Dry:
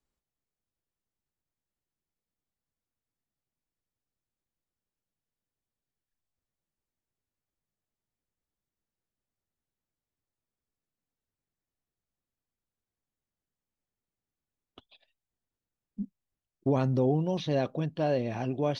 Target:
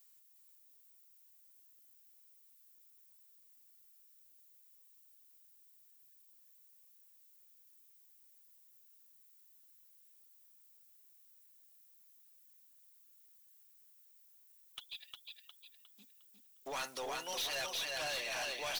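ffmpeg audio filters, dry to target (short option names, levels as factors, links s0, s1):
-filter_complex "[0:a]highpass=1400,aemphasis=mode=production:type=riaa,asplit=2[s0][s1];[s1]aecho=0:1:357|714|1071|1428|1785:0.562|0.214|0.0812|0.0309|0.0117[s2];[s0][s2]amix=inputs=2:normalize=0,aeval=exprs='(tanh(158*val(0)+0.1)-tanh(0.1))/158':c=same,volume=2.66"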